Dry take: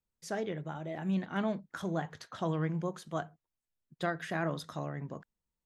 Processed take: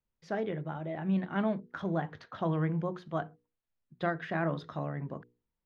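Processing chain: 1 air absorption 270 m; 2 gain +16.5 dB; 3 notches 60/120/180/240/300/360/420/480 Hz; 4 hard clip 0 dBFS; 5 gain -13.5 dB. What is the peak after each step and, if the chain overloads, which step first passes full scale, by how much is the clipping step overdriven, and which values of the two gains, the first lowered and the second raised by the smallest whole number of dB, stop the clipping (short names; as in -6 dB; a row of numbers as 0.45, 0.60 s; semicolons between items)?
-21.0, -4.5, -4.5, -4.5, -18.0 dBFS; no overload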